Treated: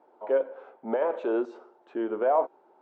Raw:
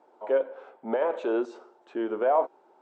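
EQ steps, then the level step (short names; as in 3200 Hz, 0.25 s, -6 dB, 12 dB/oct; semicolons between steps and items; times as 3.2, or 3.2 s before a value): LPF 2200 Hz 6 dB/oct; 0.0 dB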